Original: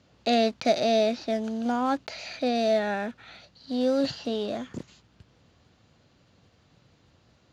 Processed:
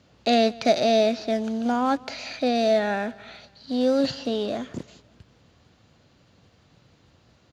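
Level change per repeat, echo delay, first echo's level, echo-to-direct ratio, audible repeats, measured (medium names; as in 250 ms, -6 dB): -6.0 dB, 186 ms, -23.0 dB, -22.0 dB, 2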